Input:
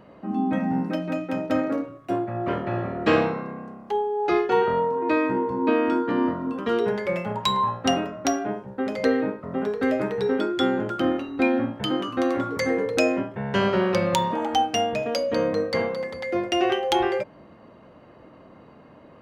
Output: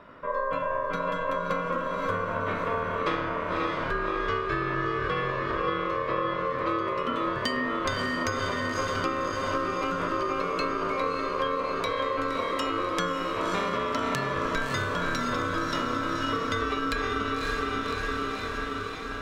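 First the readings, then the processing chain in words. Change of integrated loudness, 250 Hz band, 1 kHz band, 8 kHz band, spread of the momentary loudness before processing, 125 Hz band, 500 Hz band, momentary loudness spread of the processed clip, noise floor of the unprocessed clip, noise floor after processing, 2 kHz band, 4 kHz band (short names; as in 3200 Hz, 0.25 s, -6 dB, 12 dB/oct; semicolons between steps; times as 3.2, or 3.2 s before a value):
-4.0 dB, -8.5 dB, -1.0 dB, -4.5 dB, 6 LU, -2.5 dB, -6.0 dB, 2 LU, -50 dBFS, -32 dBFS, +1.5 dB, -3.0 dB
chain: on a send: diffused feedback echo 0.579 s, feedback 66%, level -3 dB; on the sum: ring modulator 800 Hz; compressor, threshold -27 dBFS, peak gain reduction 11 dB; gain +2.5 dB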